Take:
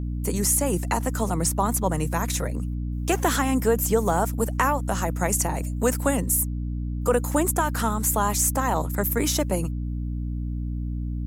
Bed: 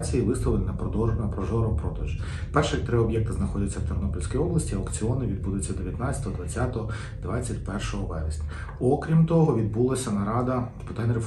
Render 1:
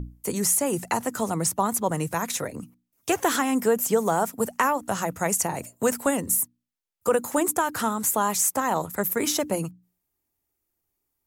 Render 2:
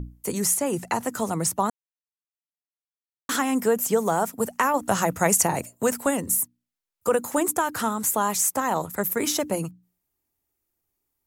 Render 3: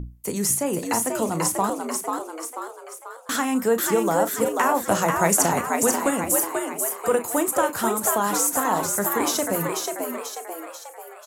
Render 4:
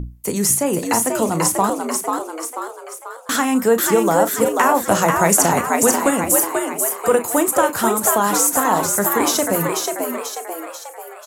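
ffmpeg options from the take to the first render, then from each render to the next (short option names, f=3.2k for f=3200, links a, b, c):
-af "bandreject=f=60:t=h:w=6,bandreject=f=120:t=h:w=6,bandreject=f=180:t=h:w=6,bandreject=f=240:t=h:w=6,bandreject=f=300:t=h:w=6"
-filter_complex "[0:a]asettb=1/sr,asplit=3[a][b][c];[a]atrim=end=0.544[d];[b]atrim=start=0.54:end=0.99,asetpts=PTS-STARTPTS,afade=t=in:d=0.004:c=qsin,afade=t=out:st=0.446:d=0.004:c=qsin,highshelf=f=8.1k:g=-6.5[e];[c]atrim=start=0.986[f];[d][e]acrossfade=d=0.004:c1=hsin:c2=qsin[g];[g][f]acrossfade=d=0.004:c1=qsin:c2=hsin,asplit=5[h][i][j][k][l];[h]atrim=end=1.7,asetpts=PTS-STARTPTS,afade=t=out:st=1.696:d=0.004:c=hsin[m];[i]atrim=start=1.7:end=3.29,asetpts=PTS-STARTPTS,volume=0[n];[j]atrim=start=3.29:end=4.742,asetpts=PTS-STARTPTS,afade=t=in:d=0.004:c=hsin[o];[k]atrim=start=4.738:end=5.612,asetpts=PTS-STARTPTS,volume=4.5dB[p];[l]atrim=start=5.608[q];[m][n][o]concat=n=3:v=0:a=1[r];[r][p]acrossfade=d=0.004:c1=hsin:c2=hsin[s];[s][q]acrossfade=d=0.004:c1=hsin:c2=hsin"
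-filter_complex "[0:a]asplit=2[a][b];[b]adelay=35,volume=-12dB[c];[a][c]amix=inputs=2:normalize=0,asplit=2[d][e];[e]asplit=7[f][g][h][i][j][k][l];[f]adelay=489,afreqshift=78,volume=-4dB[m];[g]adelay=978,afreqshift=156,volume=-9.8dB[n];[h]adelay=1467,afreqshift=234,volume=-15.7dB[o];[i]adelay=1956,afreqshift=312,volume=-21.5dB[p];[j]adelay=2445,afreqshift=390,volume=-27.4dB[q];[k]adelay=2934,afreqshift=468,volume=-33.2dB[r];[l]adelay=3423,afreqshift=546,volume=-39.1dB[s];[m][n][o][p][q][r][s]amix=inputs=7:normalize=0[t];[d][t]amix=inputs=2:normalize=0"
-af "volume=5.5dB,alimiter=limit=-2dB:level=0:latency=1"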